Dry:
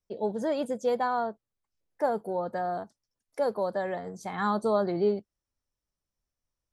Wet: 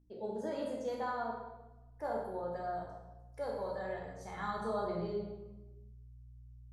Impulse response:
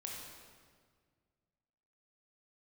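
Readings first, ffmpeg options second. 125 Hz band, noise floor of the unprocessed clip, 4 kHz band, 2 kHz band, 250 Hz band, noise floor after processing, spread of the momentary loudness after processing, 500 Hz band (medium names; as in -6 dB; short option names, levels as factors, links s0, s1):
-5.5 dB, under -85 dBFS, -8.0 dB, -7.5 dB, -10.0 dB, -57 dBFS, 20 LU, -9.5 dB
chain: -filter_complex "[0:a]aeval=exprs='val(0)+0.00224*(sin(2*PI*60*n/s)+sin(2*PI*2*60*n/s)/2+sin(2*PI*3*60*n/s)/3+sin(2*PI*4*60*n/s)/4+sin(2*PI*5*60*n/s)/5)':c=same,asubboost=boost=10:cutoff=78[s0];[1:a]atrim=start_sample=2205,asetrate=83790,aresample=44100[s1];[s0][s1]afir=irnorm=-1:irlink=0,volume=0.891"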